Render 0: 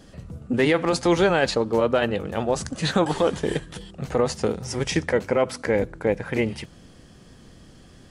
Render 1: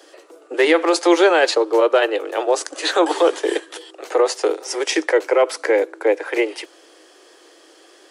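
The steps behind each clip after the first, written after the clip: steep high-pass 310 Hz 96 dB/octave; trim +6 dB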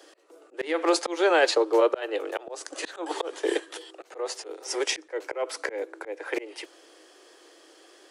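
slow attack 275 ms; trim -5 dB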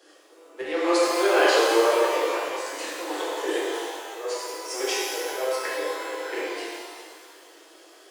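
pitch-shifted reverb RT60 1.8 s, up +12 st, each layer -8 dB, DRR -7.5 dB; trim -6 dB

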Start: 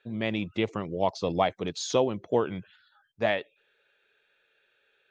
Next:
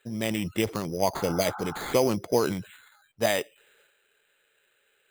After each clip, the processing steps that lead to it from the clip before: sample-rate reducer 5.5 kHz, jitter 0%; transient shaper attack +2 dB, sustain +8 dB; spectral replace 1.22–1.88 s, 670–1600 Hz after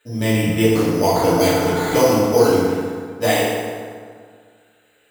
FDN reverb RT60 1.9 s, low-frequency decay 1.05×, high-frequency decay 0.6×, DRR -9.5 dB

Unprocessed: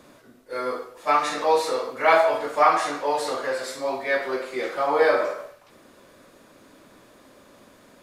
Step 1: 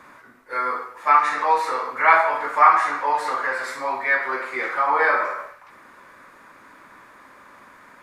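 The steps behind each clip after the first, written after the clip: high-order bell 1.4 kHz +13.5 dB; in parallel at -1 dB: compression, threshold -21 dBFS, peak gain reduction 18.5 dB; on the sum: trim -8.5 dB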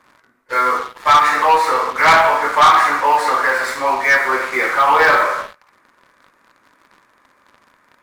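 waveshaping leveller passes 3; trim -2.5 dB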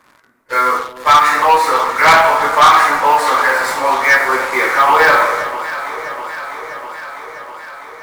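treble shelf 8.8 kHz +6 dB; on a send: echo whose repeats swap between lows and highs 325 ms, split 820 Hz, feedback 83%, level -11 dB; on the sum: trim +2 dB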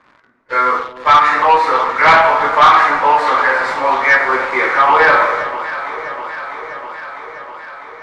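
low-pass 3.6 kHz 12 dB/octave

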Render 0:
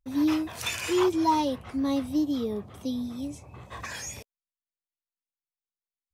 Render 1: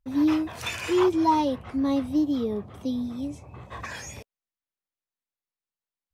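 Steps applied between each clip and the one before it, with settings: treble shelf 4 kHz -9 dB; trim +2.5 dB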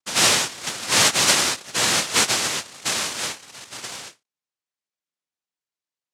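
noise-vocoded speech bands 1; endings held to a fixed fall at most 310 dB/s; trim +3.5 dB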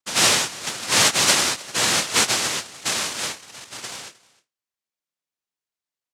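delay 309 ms -23 dB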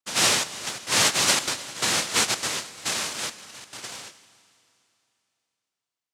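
trance gate "xxxxx.xxx.x" 173 bpm -12 dB; Schroeder reverb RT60 2.9 s, combs from 31 ms, DRR 14.5 dB; trim -3.5 dB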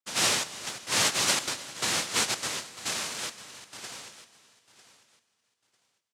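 feedback delay 948 ms, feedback 22%, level -17 dB; trim -4.5 dB

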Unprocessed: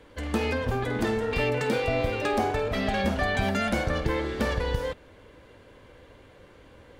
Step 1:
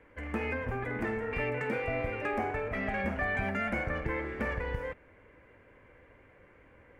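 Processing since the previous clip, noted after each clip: resonant high shelf 2.9 kHz -10 dB, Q 3; trim -7.5 dB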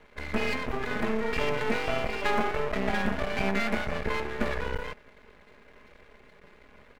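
comb 4.8 ms, depth 85%; half-wave rectifier; trim +6 dB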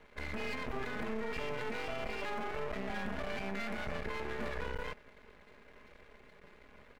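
peak limiter -24 dBFS, peak gain reduction 12 dB; trim -3.5 dB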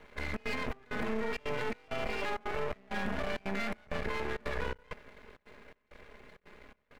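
trance gate "xxxx.xxx..x" 165 bpm -24 dB; trim +4 dB

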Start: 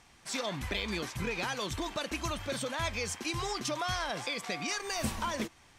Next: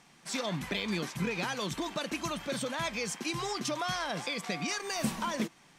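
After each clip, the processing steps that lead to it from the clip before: resonant low shelf 120 Hz -10 dB, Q 3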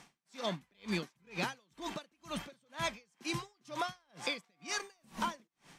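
compression 1.5:1, threshold -38 dBFS, peak gain reduction 5 dB; logarithmic tremolo 2.1 Hz, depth 40 dB; trim +3.5 dB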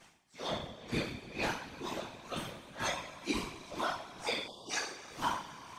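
two-slope reverb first 0.51 s, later 4.9 s, from -19 dB, DRR -9 dB; spectral selection erased 4.47–4.71 s, 1.1–2.8 kHz; whisper effect; trim -7.5 dB

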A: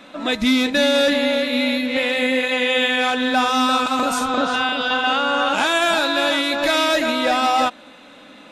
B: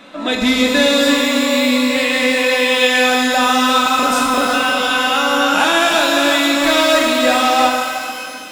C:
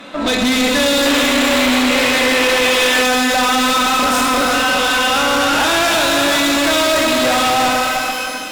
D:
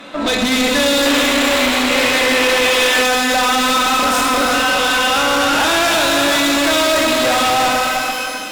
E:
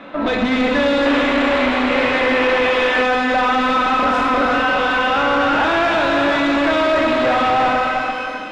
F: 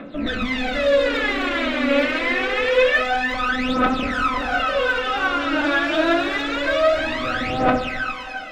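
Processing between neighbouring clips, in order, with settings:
pitch-shifted reverb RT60 2.1 s, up +12 st, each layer -8 dB, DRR 1 dB; trim +2 dB
valve stage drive 21 dB, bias 0.6; painted sound noise, 1.05–3.03 s, 250–3400 Hz -30 dBFS; trim +8.5 dB
hum notches 50/100/150/200/250 Hz
low-pass 2.1 kHz 12 dB/octave
peaking EQ 920 Hz -9.5 dB 0.46 oct; phaser 0.26 Hz, delay 3.6 ms, feedback 76%; trim -6.5 dB

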